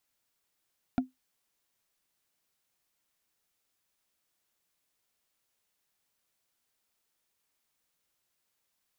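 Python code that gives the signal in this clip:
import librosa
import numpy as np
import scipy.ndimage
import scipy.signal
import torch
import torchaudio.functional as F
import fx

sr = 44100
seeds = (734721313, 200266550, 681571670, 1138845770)

y = fx.strike_wood(sr, length_s=0.45, level_db=-19.5, body='bar', hz=257.0, decay_s=0.16, tilt_db=6.0, modes=5)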